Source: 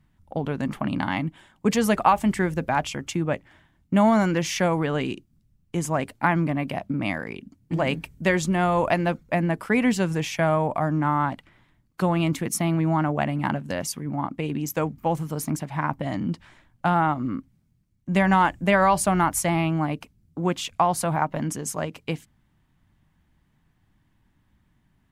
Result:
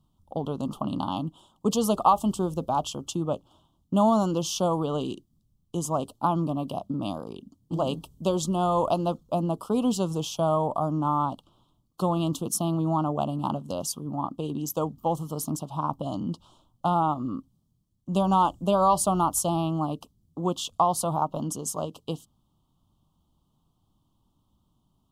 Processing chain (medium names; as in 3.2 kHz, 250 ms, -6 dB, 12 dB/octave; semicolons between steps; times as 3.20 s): elliptic band-stop 1.2–3.1 kHz, stop band 70 dB; bass shelf 280 Hz -5.5 dB